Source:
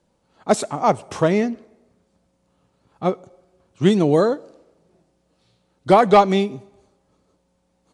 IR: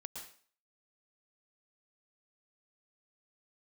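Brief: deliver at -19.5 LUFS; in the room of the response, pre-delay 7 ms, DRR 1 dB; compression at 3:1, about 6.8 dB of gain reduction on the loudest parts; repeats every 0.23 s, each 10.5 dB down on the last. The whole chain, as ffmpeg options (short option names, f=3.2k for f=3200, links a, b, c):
-filter_complex "[0:a]acompressor=threshold=-17dB:ratio=3,aecho=1:1:230|460|690:0.299|0.0896|0.0269,asplit=2[a][b];[1:a]atrim=start_sample=2205,adelay=7[c];[b][c]afir=irnorm=-1:irlink=0,volume=2.5dB[d];[a][d]amix=inputs=2:normalize=0,volume=2dB"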